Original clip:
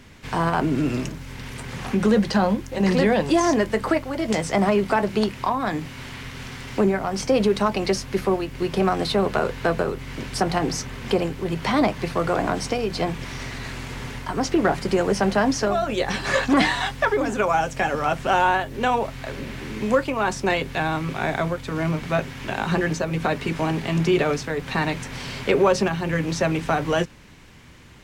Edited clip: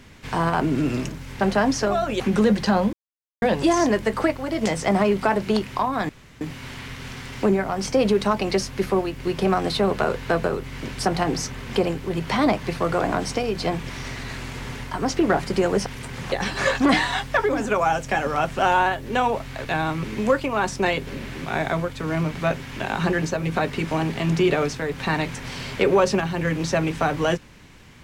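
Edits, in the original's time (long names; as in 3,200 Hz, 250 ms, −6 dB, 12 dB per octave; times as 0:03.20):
0:01.41–0:01.87: swap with 0:15.21–0:16.00
0:02.60–0:03.09: silence
0:05.76: splice in room tone 0.32 s
0:19.33–0:19.68: swap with 0:20.71–0:21.10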